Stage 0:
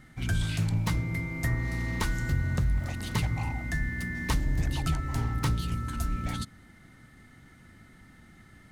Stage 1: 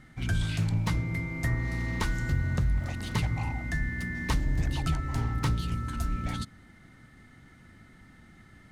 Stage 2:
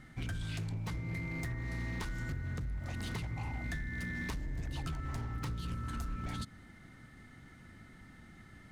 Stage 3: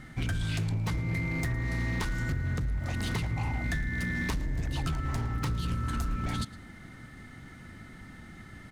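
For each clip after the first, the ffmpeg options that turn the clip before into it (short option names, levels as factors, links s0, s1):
-af "highshelf=f=10000:g=-8.5"
-af "acompressor=threshold=0.0251:ratio=16,asoftclip=type=hard:threshold=0.0251,volume=0.891"
-af "aecho=1:1:111:0.1,volume=2.37"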